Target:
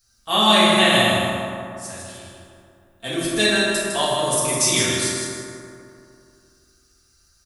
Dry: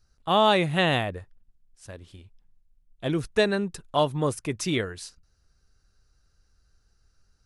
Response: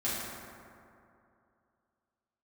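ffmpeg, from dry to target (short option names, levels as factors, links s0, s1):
-filter_complex "[0:a]aecho=1:1:156|312|468|624:0.531|0.181|0.0614|0.0209,crystalizer=i=9.5:c=0[s0];[1:a]atrim=start_sample=2205[s1];[s0][s1]afir=irnorm=-1:irlink=0,volume=0.422"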